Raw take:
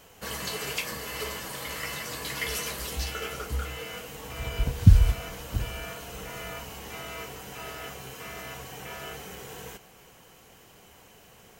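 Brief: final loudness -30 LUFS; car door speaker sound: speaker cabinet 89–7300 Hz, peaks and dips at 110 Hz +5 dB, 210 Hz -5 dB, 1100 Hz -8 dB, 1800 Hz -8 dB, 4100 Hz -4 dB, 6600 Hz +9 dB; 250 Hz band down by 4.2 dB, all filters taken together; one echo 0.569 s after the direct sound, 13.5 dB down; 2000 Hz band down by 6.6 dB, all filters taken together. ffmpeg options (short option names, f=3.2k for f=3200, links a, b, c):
-af "highpass=89,equalizer=f=110:t=q:w=4:g=5,equalizer=f=210:t=q:w=4:g=-5,equalizer=f=1.1k:t=q:w=4:g=-8,equalizer=f=1.8k:t=q:w=4:g=-8,equalizer=f=4.1k:t=q:w=4:g=-4,equalizer=f=6.6k:t=q:w=4:g=9,lowpass=f=7.3k:w=0.5412,lowpass=f=7.3k:w=1.3066,equalizer=f=250:t=o:g=-4.5,equalizer=f=2k:t=o:g=-4,aecho=1:1:569:0.211,volume=3dB"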